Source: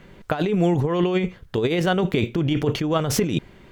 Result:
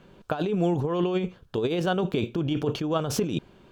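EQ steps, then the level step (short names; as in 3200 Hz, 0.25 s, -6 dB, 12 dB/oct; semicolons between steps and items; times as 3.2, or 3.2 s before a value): low shelf 99 Hz -8 dB; bell 2000 Hz -13.5 dB 0.3 oct; high shelf 6400 Hz -5.5 dB; -3.5 dB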